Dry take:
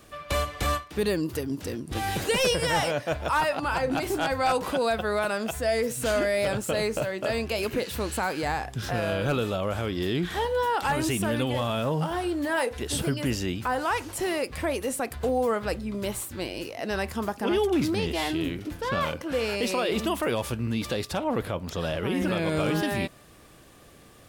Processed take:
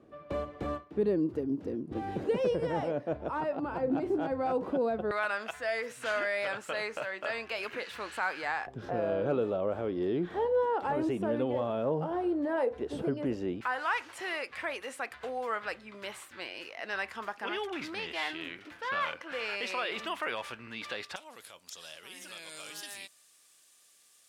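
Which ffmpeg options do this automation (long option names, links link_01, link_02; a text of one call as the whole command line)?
ffmpeg -i in.wav -af "asetnsamples=nb_out_samples=441:pad=0,asendcmd='5.11 bandpass f 1600;8.67 bandpass f 450;13.61 bandpass f 1800;21.16 bandpass f 7700',bandpass=frequency=320:width_type=q:width=1.1:csg=0" out.wav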